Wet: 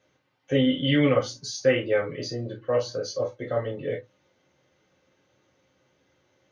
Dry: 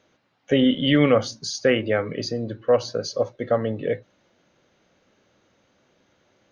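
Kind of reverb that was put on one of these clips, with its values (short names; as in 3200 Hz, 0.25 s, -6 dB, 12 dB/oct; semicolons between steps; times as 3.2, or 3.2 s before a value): non-linear reverb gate 80 ms falling, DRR -3.5 dB; gain -8.5 dB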